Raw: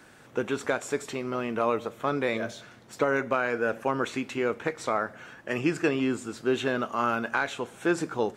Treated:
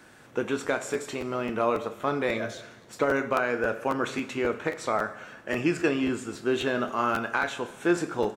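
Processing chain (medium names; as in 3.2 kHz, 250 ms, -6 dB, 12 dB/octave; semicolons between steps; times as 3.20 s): doubling 29 ms -13 dB; on a send at -10.5 dB: reverberation, pre-delay 3 ms; on the sum: crackling interface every 0.27 s, samples 512, repeat, from 0.66 s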